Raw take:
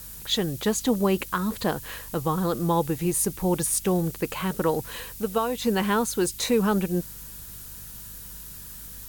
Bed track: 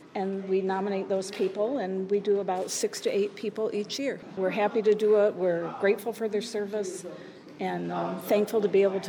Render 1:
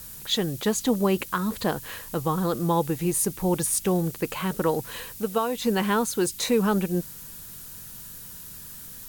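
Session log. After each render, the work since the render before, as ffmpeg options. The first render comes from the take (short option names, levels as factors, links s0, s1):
-af "bandreject=f=50:t=h:w=4,bandreject=f=100:t=h:w=4"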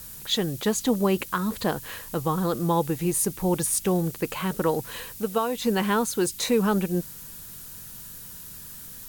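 -af anull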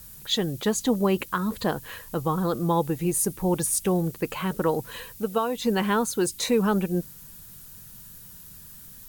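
-af "afftdn=nr=6:nf=-42"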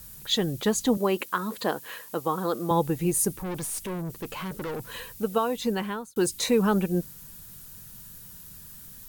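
-filter_complex "[0:a]asettb=1/sr,asplit=3[s0][s1][s2];[s0]atrim=end=0.974[s3];[s1]atrim=start=0.97:end=2.71,asetpts=PTS-STARTPTS,afade=t=in:d=0.004:c=qsin,afade=t=out:st=1.736:d=0.004:c=qsin,highpass=270[s4];[s2]atrim=start=2.706[s5];[s3][s4]acrossfade=d=0.004:c1=hsin:c2=qsin[s6];[s6][s5]acrossfade=d=0.004:c1=qsin:c2=hsin,asettb=1/sr,asplit=3[s7][s8][s9];[s7]atrim=end=3.394[s10];[s8]atrim=start=3.39:end=4.9,asetpts=PTS-STARTPTS,afade=t=in:d=0.004:c=qsin,afade=t=out:st=1.506:d=0.004:c=qsin,aeval=exprs='(tanh(31.6*val(0)+0.2)-tanh(0.2))/31.6':c=same[s11];[s9]atrim=start=4.896[s12];[s10][s11]acrossfade=d=0.004:c1=hsin:c2=qsin[s13];[s13][s12]acrossfade=d=0.004:c1=qsin:c2=hsin,asplit=2[s14][s15];[s14]atrim=end=6.16,asetpts=PTS-STARTPTS,afade=t=out:st=5.51:d=0.65[s16];[s15]atrim=start=6.16,asetpts=PTS-STARTPTS,afade=t=in:d=0.004:c=hsin[s17];[s16][s17]concat=n=2:v=0:a=1"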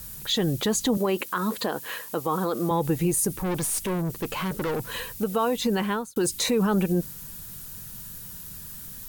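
-af "acontrast=34,alimiter=limit=0.168:level=0:latency=1:release=50"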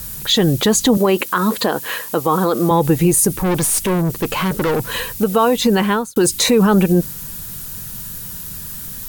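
-af "volume=3.16"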